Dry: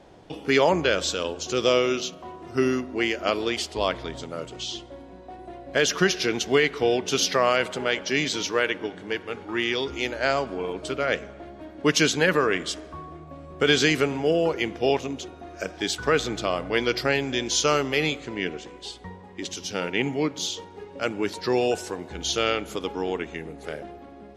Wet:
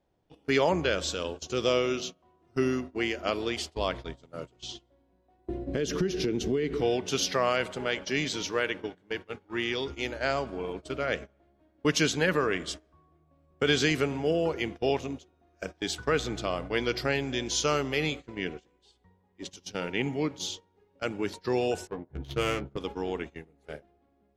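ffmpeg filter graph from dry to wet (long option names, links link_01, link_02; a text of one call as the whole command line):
ffmpeg -i in.wav -filter_complex "[0:a]asettb=1/sr,asplit=3[link_01][link_02][link_03];[link_01]atrim=end=5.484[link_04];[link_02]atrim=start=5.48:end=6.81,asetpts=PTS-STARTPTS,afade=type=in:duration=0.004:curve=qsin,afade=type=out:start_time=1.326:duration=0.004:curve=qsin,lowshelf=frequency=540:width_type=q:width=1.5:gain=11,acompressor=threshold=-21dB:ratio=5:attack=3.2:release=140:knee=1:detection=peak[link_05];[link_03]atrim=start=6.806[link_06];[link_04][link_05]acrossfade=duration=0.004:curve1=hsin:curve2=qsin[link_07];[link_07][link_06]acrossfade=duration=0.004:curve1=qsin:curve2=hsin,asettb=1/sr,asplit=3[link_08][link_09][link_10];[link_08]atrim=end=21.874[link_11];[link_09]atrim=start=21.87:end=22.78,asetpts=PTS-STARTPTS,afade=type=in:duration=0.004:curve=qsin,afade=type=out:start_time=0.906:duration=0.004:curve=qsin,equalizer=frequency=140:width_type=o:width=0.23:gain=11.5,adynamicsmooth=sensitivity=1.5:basefreq=880,asplit=2[link_12][link_13];[link_13]adelay=15,volume=-6.5dB[link_14];[link_12][link_14]amix=inputs=2:normalize=0,atrim=end_sample=40131[link_15];[link_10]atrim=start=22.776[link_16];[link_11][link_15]acrossfade=duration=0.004:curve1=hsin:curve2=qsin[link_17];[link_17][link_16]acrossfade=duration=0.004:curve1=qsin:curve2=hsin,agate=range=-20dB:threshold=-32dB:ratio=16:detection=peak,lowshelf=frequency=130:gain=8,volume=-5.5dB" out.wav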